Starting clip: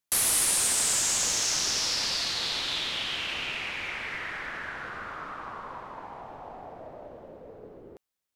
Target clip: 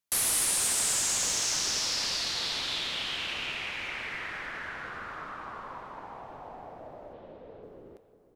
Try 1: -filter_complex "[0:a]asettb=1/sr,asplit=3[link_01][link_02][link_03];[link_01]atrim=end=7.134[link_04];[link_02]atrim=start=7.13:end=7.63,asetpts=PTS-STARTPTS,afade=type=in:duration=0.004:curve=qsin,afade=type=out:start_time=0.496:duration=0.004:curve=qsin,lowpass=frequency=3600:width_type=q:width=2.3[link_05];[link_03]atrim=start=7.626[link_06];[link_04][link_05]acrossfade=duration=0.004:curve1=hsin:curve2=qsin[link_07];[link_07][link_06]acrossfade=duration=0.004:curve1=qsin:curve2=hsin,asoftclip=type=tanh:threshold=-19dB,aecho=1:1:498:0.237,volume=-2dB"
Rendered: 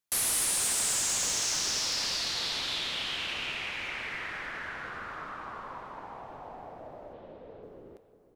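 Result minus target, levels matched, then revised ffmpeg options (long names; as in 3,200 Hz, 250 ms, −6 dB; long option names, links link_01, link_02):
soft clipping: distortion +10 dB
-filter_complex "[0:a]asettb=1/sr,asplit=3[link_01][link_02][link_03];[link_01]atrim=end=7.134[link_04];[link_02]atrim=start=7.13:end=7.63,asetpts=PTS-STARTPTS,afade=type=in:duration=0.004:curve=qsin,afade=type=out:start_time=0.496:duration=0.004:curve=qsin,lowpass=frequency=3600:width_type=q:width=2.3[link_05];[link_03]atrim=start=7.626[link_06];[link_04][link_05]acrossfade=duration=0.004:curve1=hsin:curve2=qsin[link_07];[link_07][link_06]acrossfade=duration=0.004:curve1=qsin:curve2=hsin,asoftclip=type=tanh:threshold=-12.5dB,aecho=1:1:498:0.237,volume=-2dB"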